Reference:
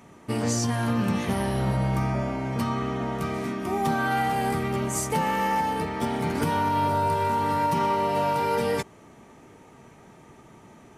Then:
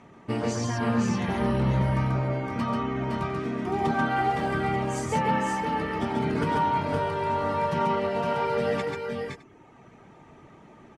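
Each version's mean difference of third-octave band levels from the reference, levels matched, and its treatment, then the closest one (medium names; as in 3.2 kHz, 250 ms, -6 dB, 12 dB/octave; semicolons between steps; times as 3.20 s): 4.5 dB: low-pass 7.4 kHz 12 dB/octave; reverb removal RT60 1.4 s; tone controls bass -1 dB, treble -8 dB; on a send: multi-tap echo 92/138/513/535/611 ms -14.5/-3/-4.5/-8.5/-20 dB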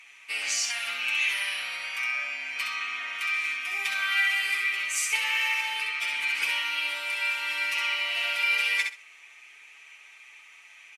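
16.0 dB: resonant high-pass 2.4 kHz, resonance Q 5.7; treble shelf 12 kHz -9.5 dB; comb 7.1 ms, depth 80%; feedback delay 65 ms, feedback 20%, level -5 dB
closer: first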